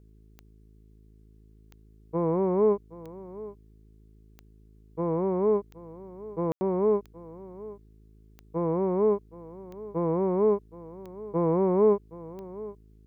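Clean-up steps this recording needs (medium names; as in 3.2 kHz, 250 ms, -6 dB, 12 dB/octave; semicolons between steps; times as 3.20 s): de-click; de-hum 53.5 Hz, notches 8; room tone fill 6.52–6.61 s; inverse comb 771 ms -17.5 dB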